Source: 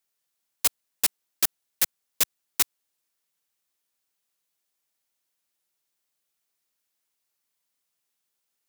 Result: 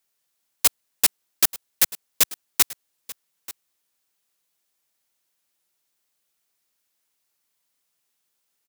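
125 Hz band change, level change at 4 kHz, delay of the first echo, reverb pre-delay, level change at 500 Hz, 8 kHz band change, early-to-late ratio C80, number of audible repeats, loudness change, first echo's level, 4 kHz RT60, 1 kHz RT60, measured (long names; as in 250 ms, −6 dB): +4.5 dB, +4.5 dB, 886 ms, no reverb audible, +4.5 dB, +4.5 dB, no reverb audible, 1, +4.5 dB, −19.0 dB, no reverb audible, no reverb audible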